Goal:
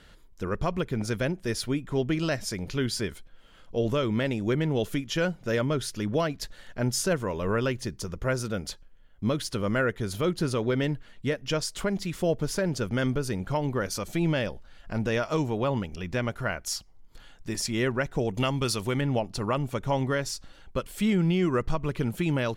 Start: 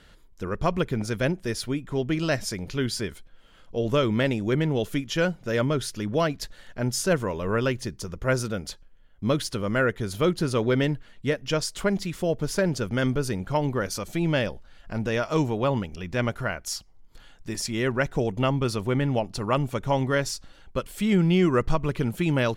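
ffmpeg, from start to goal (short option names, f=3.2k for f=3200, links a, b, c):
-filter_complex "[0:a]asettb=1/sr,asplit=3[a][b][c];[a]atrim=end=18.344[d];[b]atrim=start=18.34:end=19.01,asetpts=PTS-STARTPTS,afade=t=in:d=0.004:c=qsin,afade=t=out:st=0.666:d=0.004:c=qsin,highshelf=f=2.3k:g=11.5[e];[c]atrim=start=19.006[f];[d][e]acrossfade=d=0.004:c1=hsin:c2=qsin[g];[g][f]acrossfade=d=0.004:c1=qsin:c2=hsin,alimiter=limit=-15.5dB:level=0:latency=1:release=285"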